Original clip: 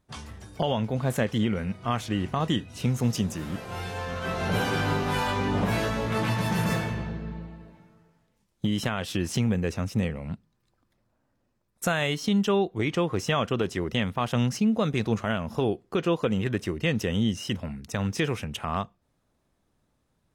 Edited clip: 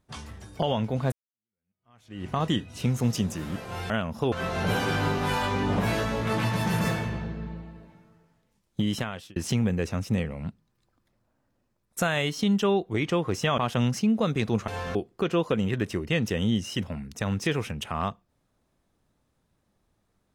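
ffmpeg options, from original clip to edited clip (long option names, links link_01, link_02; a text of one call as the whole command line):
ffmpeg -i in.wav -filter_complex "[0:a]asplit=8[link_01][link_02][link_03][link_04][link_05][link_06][link_07][link_08];[link_01]atrim=end=1.12,asetpts=PTS-STARTPTS,afade=type=out:start_time=1.116:duration=0.004:curve=hsin[link_09];[link_02]atrim=start=1.12:end=3.902,asetpts=PTS-STARTPTS,afade=type=in:duration=1.18:curve=exp[link_10];[link_03]atrim=start=15.258:end=15.682[link_11];[link_04]atrim=start=4.168:end=9.21,asetpts=PTS-STARTPTS,afade=type=out:start_time=4.592:duration=0.45[link_12];[link_05]atrim=start=9.21:end=13.432,asetpts=PTS-STARTPTS,afade=type=in:duration=0.004:curve=hsin[link_13];[link_06]atrim=start=14.158:end=15.262[link_14];[link_07]atrim=start=3.898:end=4.172[link_15];[link_08]atrim=start=15.678[link_16];[link_09][link_10]concat=n=2:v=0:a=1[link_17];[link_17][link_11]acrossfade=duration=0.004:curve1=hsin:curve2=hsin[link_18];[link_12][link_13]concat=n=2:v=0:a=1[link_19];[link_18][link_19]acrossfade=duration=0.004:curve1=hsin:curve2=hsin[link_20];[link_20][link_14]acrossfade=duration=0.004:curve1=hsin:curve2=hsin[link_21];[link_21][link_15]acrossfade=duration=0.004:curve1=hsin:curve2=hsin[link_22];[link_22][link_16]acrossfade=duration=0.004:curve1=hsin:curve2=hsin" out.wav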